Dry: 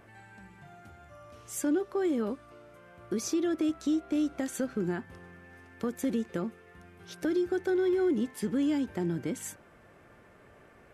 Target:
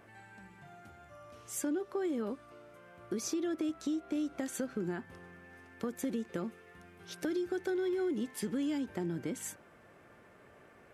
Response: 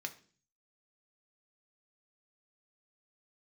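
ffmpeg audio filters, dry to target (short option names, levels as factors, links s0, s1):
-filter_complex "[0:a]lowshelf=f=65:g=-11.5,acompressor=threshold=0.0282:ratio=2.5,asplit=3[s0][s1][s2];[s0]afade=t=out:st=6.37:d=0.02[s3];[s1]adynamicequalizer=threshold=0.00316:dfrequency=1900:dqfactor=0.7:tfrequency=1900:tqfactor=0.7:attack=5:release=100:ratio=0.375:range=1.5:mode=boostabove:tftype=highshelf,afade=t=in:st=6.37:d=0.02,afade=t=out:st=8.77:d=0.02[s4];[s2]afade=t=in:st=8.77:d=0.02[s5];[s3][s4][s5]amix=inputs=3:normalize=0,volume=0.841"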